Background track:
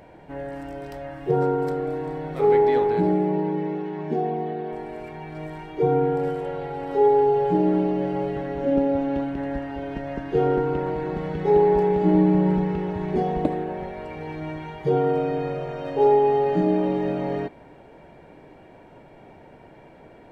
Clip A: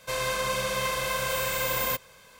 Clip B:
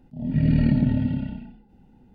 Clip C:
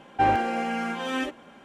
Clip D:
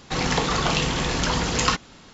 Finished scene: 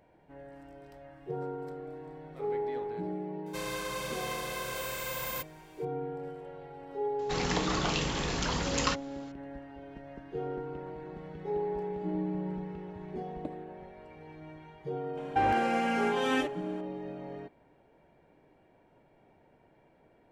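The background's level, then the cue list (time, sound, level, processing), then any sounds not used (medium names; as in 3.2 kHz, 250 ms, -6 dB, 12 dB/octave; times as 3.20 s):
background track -15.5 dB
3.46 s: add A -8.5 dB
7.19 s: add D -8.5 dB
15.17 s: add C -1 dB + peak limiter -17.5 dBFS
not used: B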